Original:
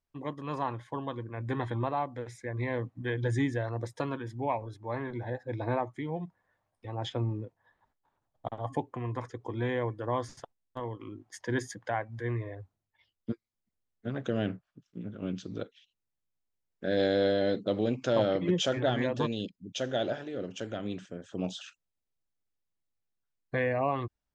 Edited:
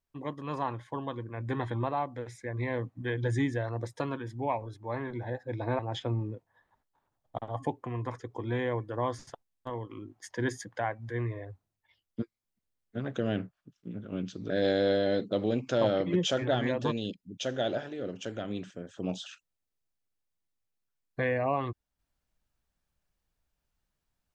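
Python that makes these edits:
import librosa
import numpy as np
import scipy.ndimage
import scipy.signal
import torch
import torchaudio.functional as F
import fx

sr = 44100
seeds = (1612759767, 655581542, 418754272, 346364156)

y = fx.edit(x, sr, fx.cut(start_s=5.79, length_s=1.1),
    fx.cut(start_s=15.6, length_s=1.25), tone=tone)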